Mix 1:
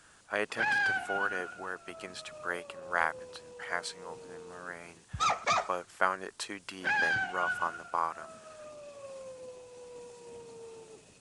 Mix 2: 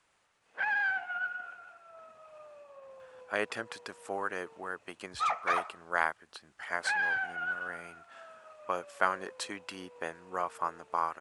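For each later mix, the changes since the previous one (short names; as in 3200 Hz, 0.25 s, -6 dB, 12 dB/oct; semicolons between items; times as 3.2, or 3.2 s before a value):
speech: entry +3.00 s; background: add three-band isolator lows -16 dB, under 590 Hz, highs -16 dB, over 2600 Hz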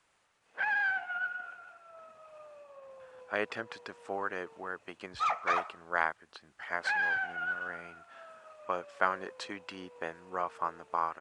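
speech: add air absorption 100 m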